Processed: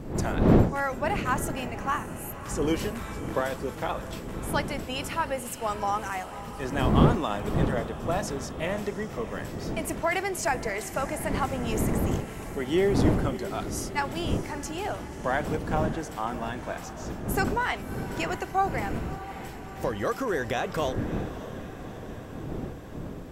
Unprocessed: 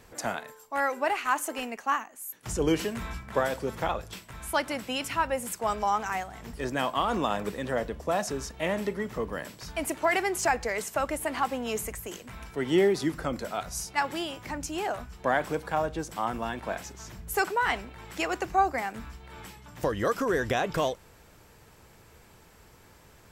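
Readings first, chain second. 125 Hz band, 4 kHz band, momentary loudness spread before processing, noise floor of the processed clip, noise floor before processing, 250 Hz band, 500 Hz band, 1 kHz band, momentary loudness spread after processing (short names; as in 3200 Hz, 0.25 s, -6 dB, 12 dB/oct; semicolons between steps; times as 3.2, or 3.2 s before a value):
+10.5 dB, -1.0 dB, 11 LU, -40 dBFS, -56 dBFS, +5.0 dB, +0.5 dB, -1.0 dB, 12 LU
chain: wind noise 290 Hz -30 dBFS; diffused feedback echo 0.623 s, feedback 68%, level -13.5 dB; gain -1.5 dB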